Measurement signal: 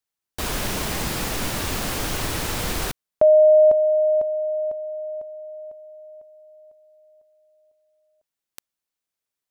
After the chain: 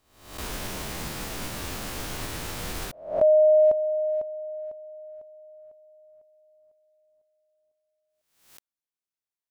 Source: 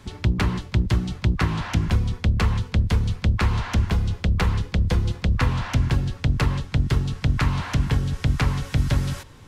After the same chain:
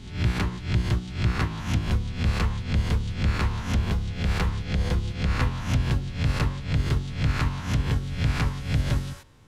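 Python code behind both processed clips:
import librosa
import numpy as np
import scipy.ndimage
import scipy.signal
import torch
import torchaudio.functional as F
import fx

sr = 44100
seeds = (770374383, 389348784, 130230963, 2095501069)

y = fx.spec_swells(x, sr, rise_s=0.65)
y = fx.upward_expand(y, sr, threshold_db=-27.0, expansion=1.5)
y = y * librosa.db_to_amplitude(-4.0)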